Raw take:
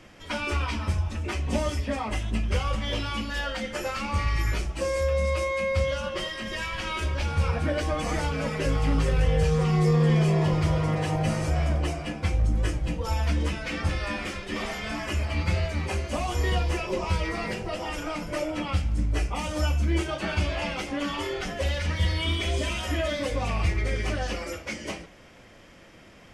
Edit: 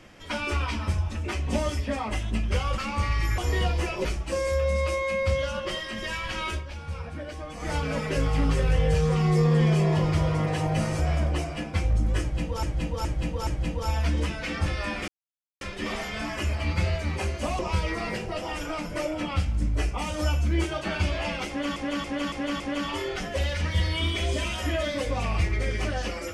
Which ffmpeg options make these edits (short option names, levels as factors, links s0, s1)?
-filter_complex "[0:a]asplit=15[s0][s1][s2][s3][s4][s5][s6][s7][s8][s9][s10][s11][s12][s13][s14];[s0]atrim=end=2.782[s15];[s1]atrim=start=3.938:end=4.542[s16];[s2]atrim=start=16.288:end=16.962[s17];[s3]atrim=start=4.538:end=7.13,asetpts=PTS-STARTPTS,afade=t=out:st=2.452:d=0.14:silence=0.316228[s18];[s4]atrim=start=7.13:end=8.09,asetpts=PTS-STARTPTS,volume=0.316[s19];[s5]atrim=start=8.09:end=13.122,asetpts=PTS-STARTPTS,afade=t=in:d=0.14:silence=0.316228[s20];[s6]atrim=start=12.698:end=13.122[s21];[s7]atrim=start=12.698:end=13.122[s22];[s8]atrim=start=12.698:end=14.31,asetpts=PTS-STARTPTS,afade=t=out:st=1.608:d=0.004:c=hsin,apad=pad_dur=0.53[s23];[s9]atrim=start=14.31:end=16.292,asetpts=PTS-STARTPTS,afade=t=in:d=0.004:c=hsin[s24];[s10]atrim=start=16.958:end=21.132[s25];[s11]atrim=start=20.848:end=21.132[s26];[s12]atrim=start=20.848:end=21.132[s27];[s13]atrim=start=20.848:end=21.132[s28];[s14]atrim=start=20.848[s29];[s15][s16]acrossfade=d=0.004:c1=hsin:c2=hsin[s30];[s30][s17]acrossfade=d=0.004:c1=hsin:c2=hsin[s31];[s18][s19][s20]concat=n=3:v=0:a=1[s32];[s31][s32]acrossfade=d=0.004:c1=hsin:c2=hsin[s33];[s33][s21]acrossfade=d=0.004:c1=hsin:c2=hsin[s34];[s34][s22]acrossfade=d=0.004:c1=hsin:c2=hsin[s35];[s23][s24]concat=n=2:v=0:a=1[s36];[s35][s36]acrossfade=d=0.004:c1=hsin:c2=hsin[s37];[s37][s25]acrossfade=d=0.004:c1=hsin:c2=hsin[s38];[s38][s26]acrossfade=d=0.004:c1=hsin:c2=hsin[s39];[s39][s27]acrossfade=d=0.004:c1=hsin:c2=hsin[s40];[s40][s28]acrossfade=d=0.004:c1=hsin:c2=hsin[s41];[s41][s29]acrossfade=d=0.004:c1=hsin:c2=hsin"